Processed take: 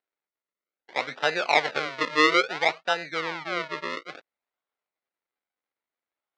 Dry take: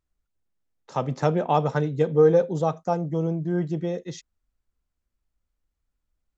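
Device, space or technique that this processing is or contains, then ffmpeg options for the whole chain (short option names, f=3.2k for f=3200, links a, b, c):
circuit-bent sampling toy: -filter_complex "[0:a]acrusher=samples=39:mix=1:aa=0.000001:lfo=1:lforange=39:lforate=0.59,highpass=560,equalizer=f=1.4k:t=q:w=4:g=4,equalizer=f=2.1k:t=q:w=4:g=8,equalizer=f=3.9k:t=q:w=4:g=4,lowpass=f=5.1k:w=0.5412,lowpass=f=5.1k:w=1.3066,asettb=1/sr,asplit=3[a][b][c];[a]atrim=end=3.204[d];[b]atrim=start=3.2:end=3.9,asetpts=PTS-STARTPTS,afade=t=in:d=0.004:c=qsin,afade=t=out:st=0.696:d=0.004:c=qsin,highshelf=f=4.2k:g=-5.5[e];[c]atrim=start=3.896[f];[d][e]acrossfade=d=0.004:c1=hsin:c2=qsin[g];[g][f]acrossfade=d=0.004:c1=qsin:c2=hsin"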